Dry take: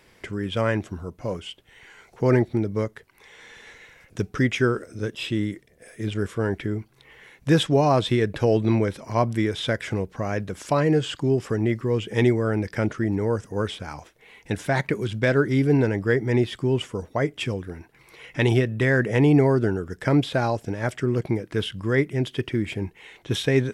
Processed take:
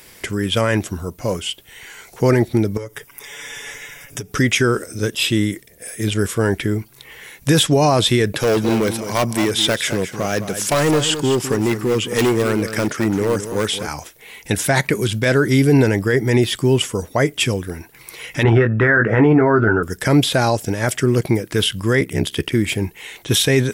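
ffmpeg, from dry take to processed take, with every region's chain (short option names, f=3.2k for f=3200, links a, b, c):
-filter_complex "[0:a]asettb=1/sr,asplit=3[a][b][c];[a]atrim=end=2.774[d];[b]atrim=start=2.77:end=4.32,asetpts=PTS-STARTPTS,afade=t=in:d=0.004:c=qsin,afade=t=out:st=1.546:d=0.004:c=qsin,aecho=1:1:7:0.95,atrim=end_sample=68355,acompressor=threshold=-34dB:ratio=5:attack=3.2:release=140:knee=1:detection=peak,asuperstop=centerf=4200:order=8:qfactor=5.2[e];[c]atrim=start=4.316[f];[d][e]acrossfade=d=0.004:c1=hsin:c2=qsin[g];[g][f]acrossfade=d=0.004:c1=qsin:c2=hsin,asettb=1/sr,asplit=3[h][i][j];[h]atrim=end=8.324[k];[i]atrim=start=8.32:end=13.88,asetpts=PTS-STARTPTS,afade=t=in:d=0.004:c=qsin,afade=t=out:st=5.556:d=0.004:c=qsin,highpass=130,volume=20dB,asoftclip=hard,volume=-20dB,aecho=1:1:212:0.299,atrim=end_sample=245196[l];[j]atrim=start=13.876[m];[k][l]acrossfade=d=0.004:c1=hsin:c2=qsin[n];[n][m]acrossfade=d=0.004:c1=qsin:c2=hsin,asettb=1/sr,asplit=3[o][p][q];[o]atrim=end=18.434[r];[p]atrim=start=18.43:end=19.83,asetpts=PTS-STARTPTS,afade=t=in:d=0.004:c=qsin,afade=t=out:st=1.396:d=0.004:c=qsin,lowpass=f=1.4k:t=q:w=4.4,asplit=2[s][t];[t]adelay=18,volume=-6dB[u];[s][u]amix=inputs=2:normalize=0,atrim=end_sample=61740[v];[q]atrim=start=19.826[w];[r][v]acrossfade=d=0.004:c1=hsin:c2=qsin[x];[x][w]acrossfade=d=0.004:c1=qsin:c2=hsin,asettb=1/sr,asplit=3[y][z][aa];[y]atrim=end=22.004[ab];[z]atrim=start=22:end=22.53,asetpts=PTS-STARTPTS,afade=t=in:d=0.004:c=qsin,afade=t=out:st=0.526:d=0.004:c=qsin,acompressor=mode=upward:threshold=-31dB:ratio=2.5:attack=3.2:release=140:knee=2.83:detection=peak,aeval=exprs='val(0)*sin(2*PI*34*n/s)':c=same[ac];[aa]atrim=start=22.526[ad];[ab][ac]acrossfade=d=0.004:c1=hsin:c2=qsin[ae];[ae][ad]acrossfade=d=0.004:c1=qsin:c2=hsin,aemphasis=mode=production:type=75fm,alimiter=limit=-13.5dB:level=0:latency=1:release=27,volume=8dB"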